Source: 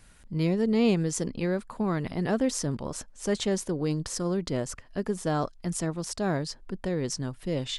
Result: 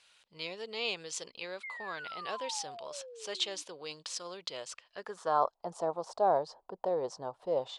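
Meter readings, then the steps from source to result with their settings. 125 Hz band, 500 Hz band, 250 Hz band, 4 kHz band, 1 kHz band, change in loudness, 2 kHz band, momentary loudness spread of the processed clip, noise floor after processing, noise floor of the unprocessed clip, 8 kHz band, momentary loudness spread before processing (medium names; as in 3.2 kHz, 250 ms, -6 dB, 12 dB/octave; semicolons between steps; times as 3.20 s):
-24.5 dB, -4.5 dB, -21.5 dB, -1.0 dB, +3.5 dB, -6.5 dB, -3.0 dB, 13 LU, -78 dBFS, -54 dBFS, -8.0 dB, 9 LU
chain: painted sound fall, 1.63–3.63 s, 290–2200 Hz -37 dBFS; graphic EQ 250/500/1000/2000/4000/8000 Hz -7/+7/+5/-10/+8/+5 dB; band-pass sweep 2.5 kHz -> 800 Hz, 4.86–5.54 s; trim +4 dB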